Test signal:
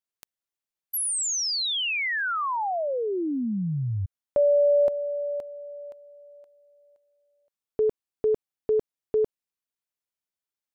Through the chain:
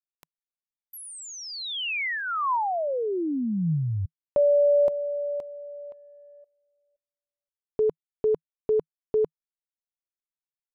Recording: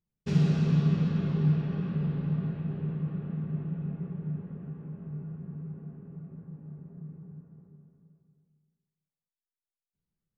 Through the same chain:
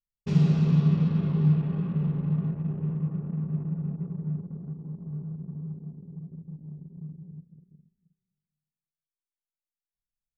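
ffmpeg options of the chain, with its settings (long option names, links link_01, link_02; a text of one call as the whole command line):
ffmpeg -i in.wav -filter_complex "[0:a]anlmdn=0.0398,acrossover=split=3100[link_01][link_02];[link_02]acompressor=threshold=-43dB:ratio=4:attack=1:release=60[link_03];[link_01][link_03]amix=inputs=2:normalize=0,equalizer=frequency=160:width_type=o:width=0.33:gain=4,equalizer=frequency=1000:width_type=o:width=0.33:gain=4,equalizer=frequency=1600:width_type=o:width=0.33:gain=-5" out.wav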